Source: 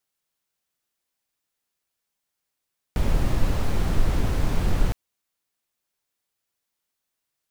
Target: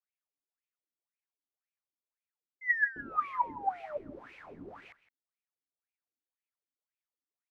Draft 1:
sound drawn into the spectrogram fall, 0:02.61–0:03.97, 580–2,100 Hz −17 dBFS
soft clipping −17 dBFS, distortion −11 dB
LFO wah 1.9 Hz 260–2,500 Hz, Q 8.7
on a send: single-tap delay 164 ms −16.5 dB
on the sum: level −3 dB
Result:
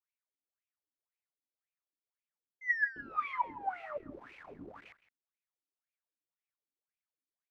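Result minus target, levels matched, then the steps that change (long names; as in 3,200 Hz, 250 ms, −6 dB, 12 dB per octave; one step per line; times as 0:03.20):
soft clipping: distortion +11 dB
change: soft clipping −8 dBFS, distortion −22 dB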